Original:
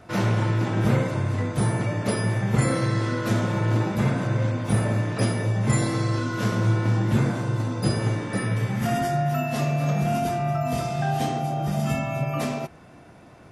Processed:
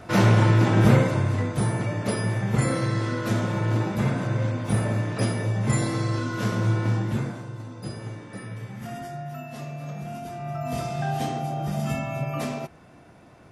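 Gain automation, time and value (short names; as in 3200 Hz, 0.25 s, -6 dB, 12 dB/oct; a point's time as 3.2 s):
0.82 s +5 dB
1.65 s -1.5 dB
6.92 s -1.5 dB
7.52 s -11.5 dB
10.25 s -11.5 dB
10.78 s -2.5 dB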